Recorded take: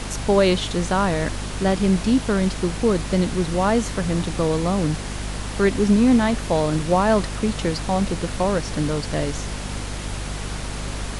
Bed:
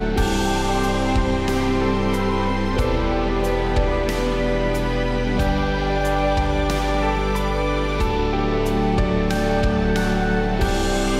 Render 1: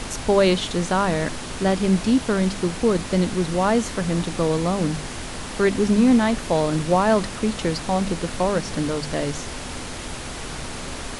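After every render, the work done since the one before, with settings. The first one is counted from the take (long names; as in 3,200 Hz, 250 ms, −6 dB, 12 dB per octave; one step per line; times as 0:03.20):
hum removal 50 Hz, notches 4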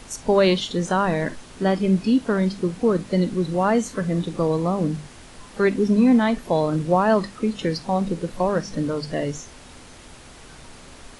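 noise reduction from a noise print 12 dB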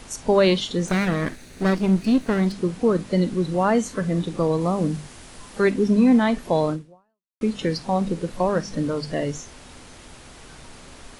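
0:00.88–0:02.52: lower of the sound and its delayed copy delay 0.47 ms
0:04.61–0:05.71: high-shelf EQ 7,100 Hz +6 dB
0:06.71–0:07.41: fade out exponential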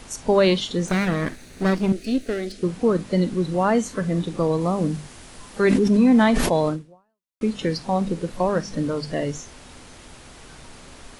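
0:01.92–0:02.63: phaser with its sweep stopped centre 400 Hz, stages 4
0:05.60–0:06.69: level that may fall only so fast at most 24 dB per second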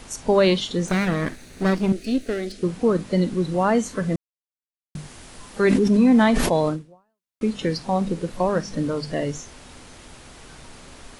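0:04.16–0:04.95: silence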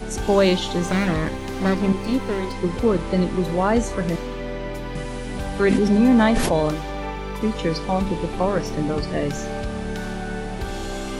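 mix in bed −9 dB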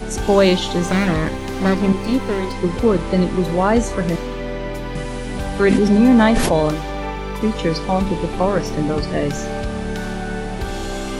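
level +3.5 dB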